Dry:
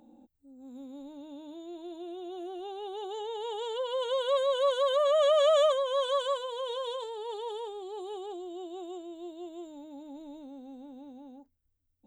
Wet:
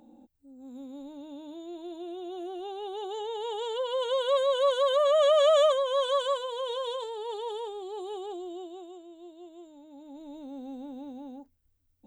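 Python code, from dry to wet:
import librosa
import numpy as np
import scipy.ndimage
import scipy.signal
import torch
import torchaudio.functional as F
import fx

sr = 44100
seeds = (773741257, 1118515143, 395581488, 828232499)

y = fx.gain(x, sr, db=fx.line((8.51, 2.0), (8.94, -5.5), (9.82, -5.5), (10.62, 6.0)))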